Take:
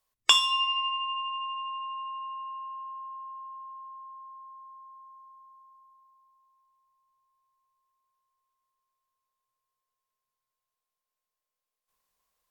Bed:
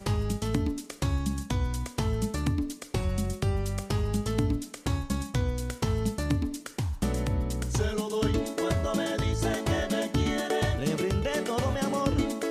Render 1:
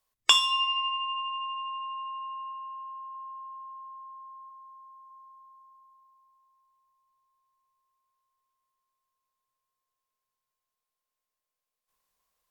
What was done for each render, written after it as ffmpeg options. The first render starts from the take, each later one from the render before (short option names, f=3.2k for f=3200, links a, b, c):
-filter_complex "[0:a]asettb=1/sr,asplit=3[a][b][c];[a]atrim=end=0.564[d];[b]atrim=start=0.56:end=1.19,asetpts=PTS-STARTPTS,afade=t=in:d=0.004:c=qsin,afade=t=out:st=0.626:d=0.004:c=qsin,highpass=320[e];[c]atrim=start=1.186[f];[d][e]acrossfade=d=0.004:c1=hsin:c2=qsin[g];[g][f]acrossfade=d=0.004:c1=qsin:c2=hsin,asettb=1/sr,asplit=3[h][i][j];[h]atrim=end=2.524[k];[i]atrim=start=2.52:end=3.15,asetpts=PTS-STARTPTS,afade=t=in:d=0.004:c=qsin,afade=t=out:st=0.626:d=0.004:c=qsin,lowshelf=f=300:g=-11.5[l];[j]atrim=start=3.146[m];[k][l]acrossfade=d=0.004:c1=hsin:c2=qsin[n];[n][m]acrossfade=d=0.004:c1=qsin:c2=hsin,asplit=3[o][p][q];[o]afade=t=out:st=4.49:d=0.02[r];[p]highpass=840,afade=t=in:st=4.49:d=0.02,afade=t=out:st=5.09:d=0.02[s];[q]afade=t=in:st=5.09:d=0.02[t];[r][s][t]amix=inputs=3:normalize=0"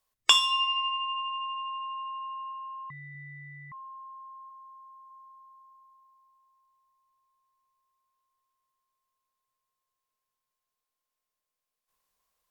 -filter_complex "[0:a]asettb=1/sr,asplit=3[a][b][c];[a]atrim=end=2.904[d];[b]atrim=start=2.9:end=3.72,asetpts=PTS-STARTPTS,afade=t=in:d=0.004:c=qsin,afade=t=out:st=0.816:d=0.004:c=qsin,aeval=exprs='val(0)*sin(2*PI*920*n/s)':c=same[e];[c]atrim=start=3.716[f];[d][e]acrossfade=d=0.004:c1=hsin:c2=qsin[g];[g][f]acrossfade=d=0.004:c1=qsin:c2=hsin"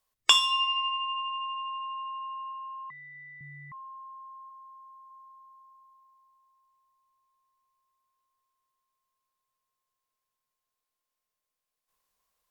-filter_complex "[0:a]asettb=1/sr,asplit=3[a][b][c];[a]atrim=end=2.894[d];[b]atrim=start=2.89:end=3.41,asetpts=PTS-STARTPTS,afade=t=in:d=0.004:c=qsin,afade=t=out:st=0.516:d=0.004:c=qsin,highpass=350,lowpass=5.4k[e];[c]atrim=start=3.406[f];[d][e]acrossfade=d=0.004:c1=hsin:c2=qsin[g];[g][f]acrossfade=d=0.004:c1=qsin:c2=hsin"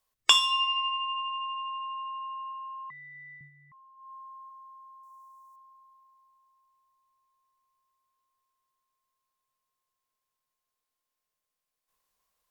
-filter_complex "[0:a]asettb=1/sr,asplit=3[a][b][c];[a]atrim=end=5.034[d];[b]atrim=start=5.03:end=5.56,asetpts=PTS-STARTPTS,afade=t=in:d=0.004:c=qsin,afade=t=out:st=0.526:d=0.004:c=qsin,highshelf=f=4.8k:t=q:w=1.5:g=11.5[e];[c]atrim=start=5.556[f];[d][e]acrossfade=d=0.004:c1=hsin:c2=qsin[g];[g][f]acrossfade=d=0.004:c1=qsin:c2=hsin,asplit=3[h][i][j];[h]atrim=end=3.51,asetpts=PTS-STARTPTS,afade=t=out:st=3.34:d=0.17:silence=0.251189[k];[i]atrim=start=3.51:end=3.96,asetpts=PTS-STARTPTS,volume=-12dB[l];[j]atrim=start=3.96,asetpts=PTS-STARTPTS,afade=t=in:d=0.17:silence=0.251189[m];[k][l][m]concat=n=3:v=0:a=1"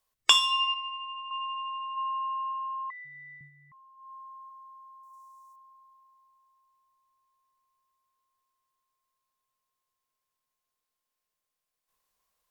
-filter_complex "[0:a]asplit=3[a][b][c];[a]afade=t=out:st=1.96:d=0.02[d];[b]highpass=f=370:w=0.5412,highpass=f=370:w=1.3066,equalizer=f=430:t=q:w=4:g=7,equalizer=f=660:t=q:w=4:g=10,equalizer=f=1.1k:t=q:w=4:g=5,equalizer=f=2.2k:t=q:w=4:g=5,lowpass=f=4.7k:w=0.5412,lowpass=f=4.7k:w=1.3066,afade=t=in:st=1.96:d=0.02,afade=t=out:st=3.04:d=0.02[e];[c]afade=t=in:st=3.04:d=0.02[f];[d][e][f]amix=inputs=3:normalize=0,asettb=1/sr,asplit=3[g][h][i];[g]atrim=end=5.134[j];[h]atrim=start=5.13:end=5.53,asetpts=PTS-STARTPTS,afade=t=in:d=0.004:c=qsin,afade=t=out:st=0.396:d=0.004:c=qsin,equalizer=f=6.5k:t=o:w=1.7:g=6[k];[i]atrim=start=5.526[l];[j][k]acrossfade=d=0.004:c1=hsin:c2=qsin[m];[m][l]acrossfade=d=0.004:c1=qsin:c2=hsin,asplit=3[n][o][p];[n]atrim=end=0.742[q];[o]atrim=start=0.738:end=1.312,asetpts=PTS-STARTPTS,volume=-6.5dB[r];[p]atrim=start=1.308[s];[q][r]acrossfade=d=0.004:c1=hsin:c2=hsin[t];[t][s]acrossfade=d=0.004:c1=hsin:c2=hsin"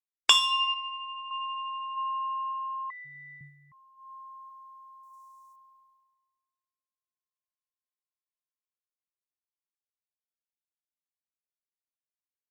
-af "agate=range=-33dB:threshold=-54dB:ratio=3:detection=peak,equalizer=f=120:w=1.1:g=5"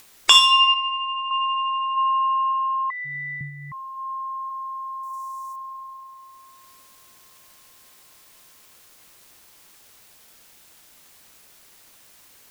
-af "acompressor=mode=upward:threshold=-36dB:ratio=2.5,alimiter=level_in=11dB:limit=-1dB:release=50:level=0:latency=1"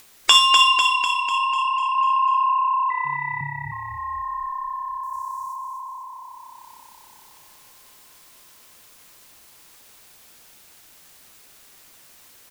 -filter_complex "[0:a]asplit=2[a][b];[b]adelay=13,volume=-14dB[c];[a][c]amix=inputs=2:normalize=0,asplit=2[d][e];[e]asplit=8[f][g][h][i][j][k][l][m];[f]adelay=248,afreqshift=-33,volume=-5.5dB[n];[g]adelay=496,afreqshift=-66,volume=-10.2dB[o];[h]adelay=744,afreqshift=-99,volume=-15dB[p];[i]adelay=992,afreqshift=-132,volume=-19.7dB[q];[j]adelay=1240,afreqshift=-165,volume=-24.4dB[r];[k]adelay=1488,afreqshift=-198,volume=-29.2dB[s];[l]adelay=1736,afreqshift=-231,volume=-33.9dB[t];[m]adelay=1984,afreqshift=-264,volume=-38.6dB[u];[n][o][p][q][r][s][t][u]amix=inputs=8:normalize=0[v];[d][v]amix=inputs=2:normalize=0"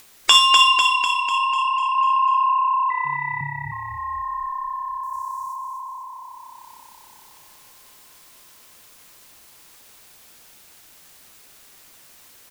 -af "volume=1dB,alimiter=limit=-1dB:level=0:latency=1"